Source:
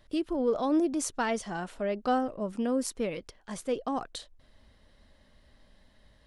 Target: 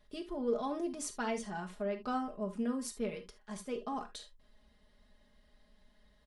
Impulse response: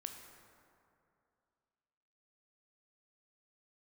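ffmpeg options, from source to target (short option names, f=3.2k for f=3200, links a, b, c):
-filter_complex "[0:a]aecho=1:1:4.8:0.75[a];[1:a]atrim=start_sample=2205,atrim=end_sample=4410,asetrate=52920,aresample=44100[b];[a][b]afir=irnorm=-1:irlink=0,volume=-2.5dB"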